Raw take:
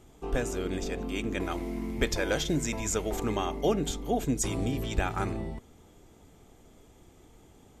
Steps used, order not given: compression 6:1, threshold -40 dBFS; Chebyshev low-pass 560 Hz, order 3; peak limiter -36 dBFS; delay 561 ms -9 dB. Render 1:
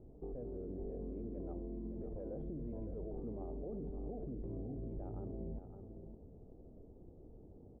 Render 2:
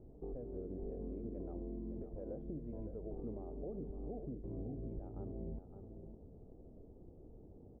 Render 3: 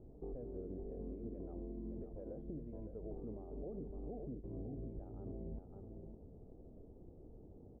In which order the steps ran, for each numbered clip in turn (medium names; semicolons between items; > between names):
Chebyshev low-pass > peak limiter > compression > delay; compression > Chebyshev low-pass > peak limiter > delay; compression > delay > peak limiter > Chebyshev low-pass